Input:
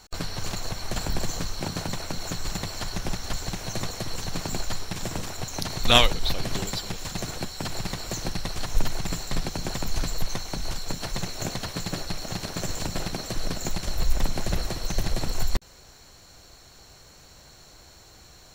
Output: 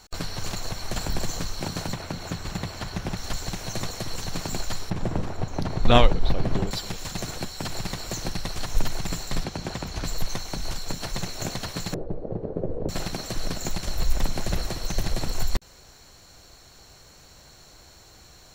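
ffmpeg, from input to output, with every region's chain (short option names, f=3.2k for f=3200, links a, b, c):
-filter_complex "[0:a]asettb=1/sr,asplit=3[a][b][c];[a]atrim=end=1.934[d];[b]atrim=start=1.93:end=3.17,asetpts=PTS-STARTPTS,afade=t=in:d=0.004:c=qsin,afade=t=out:st=1.236:d=0.004:c=qsin,highpass=f=70:p=1,bass=f=250:g=4,treble=f=4k:g=-7[e];[c]atrim=start=3.166[f];[d][e]acrossfade=d=0.004:c1=hsin:c2=qsin[g];[g][f]acrossfade=d=0.004:c1=qsin:c2=hsin,asettb=1/sr,asplit=3[h][i][j];[h]atrim=end=4.904[k];[i]atrim=start=4.9:end=6.71,asetpts=PTS-STARTPTS,afade=t=in:d=0.004:c=qsin,afade=t=out:st=1.806:d=0.004:c=qsin,lowpass=f=2.9k:p=1,tiltshelf=f=1.4k:g=6[l];[j]atrim=start=6.706[m];[k][l]acrossfade=d=0.004:c1=hsin:c2=qsin[n];[n][m]acrossfade=d=0.004:c1=qsin:c2=hsin,asettb=1/sr,asplit=3[o][p][q];[o]atrim=end=9.444[r];[p]atrim=start=9.44:end=10.05,asetpts=PTS-STARTPTS,afade=t=in:d=0.004:c=qsin,afade=t=out:st=0.606:d=0.004:c=qsin,highpass=43,highshelf=f=7.1k:g=-12[s];[q]atrim=start=10.046[t];[r][s]acrossfade=d=0.004:c1=hsin:c2=qsin[u];[u][t]acrossfade=d=0.004:c1=qsin:c2=hsin,asettb=1/sr,asplit=3[v][w][x];[v]atrim=end=11.944[y];[w]atrim=start=11.94:end=12.89,asetpts=PTS-STARTPTS,afade=t=in:d=0.004:c=qsin,afade=t=out:st=0.946:d=0.004:c=qsin,lowpass=f=470:t=q:w=4,asplit=2[z][aa];[aa]adelay=19,volume=-11dB[ab];[z][ab]amix=inputs=2:normalize=0,atrim=end_sample=41895[ac];[x]atrim=start=12.886[ad];[y][ac]acrossfade=d=0.004:c1=hsin:c2=qsin[ae];[ae][ad]acrossfade=d=0.004:c1=qsin:c2=hsin"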